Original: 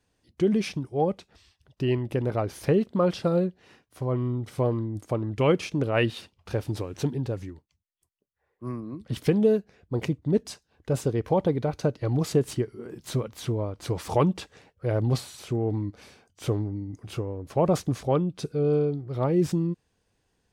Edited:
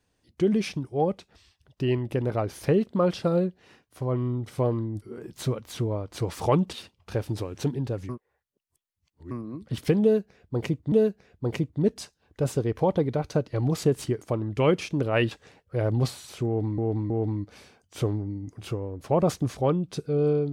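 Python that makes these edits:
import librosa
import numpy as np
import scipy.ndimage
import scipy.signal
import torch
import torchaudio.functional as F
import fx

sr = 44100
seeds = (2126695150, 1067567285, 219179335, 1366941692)

y = fx.edit(x, sr, fx.swap(start_s=5.02, length_s=1.1, other_s=12.7, other_length_s=1.71),
    fx.reverse_span(start_s=7.48, length_s=1.22),
    fx.repeat(start_s=9.41, length_s=0.9, count=2),
    fx.repeat(start_s=15.56, length_s=0.32, count=3), tone=tone)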